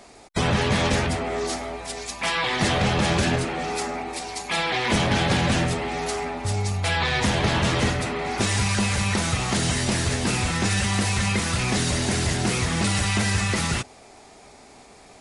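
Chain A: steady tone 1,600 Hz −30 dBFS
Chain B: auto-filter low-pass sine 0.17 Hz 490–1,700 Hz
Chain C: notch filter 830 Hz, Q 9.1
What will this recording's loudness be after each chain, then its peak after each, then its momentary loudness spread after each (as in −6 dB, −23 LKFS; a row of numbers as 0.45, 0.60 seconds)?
−23.0, −23.5, −23.5 LKFS; −9.5, −7.5, −10.0 dBFS; 7, 8, 7 LU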